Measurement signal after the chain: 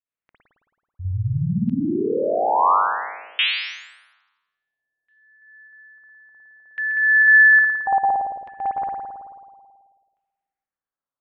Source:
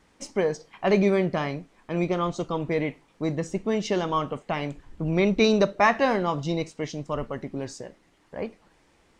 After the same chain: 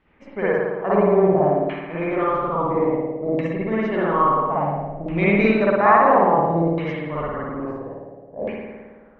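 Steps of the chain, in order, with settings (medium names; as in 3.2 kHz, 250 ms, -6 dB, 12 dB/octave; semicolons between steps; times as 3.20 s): spring tank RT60 1.6 s, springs 54 ms, chirp 35 ms, DRR -8.5 dB; LFO low-pass saw down 0.59 Hz 600–2800 Hz; tape noise reduction on one side only decoder only; trim -5 dB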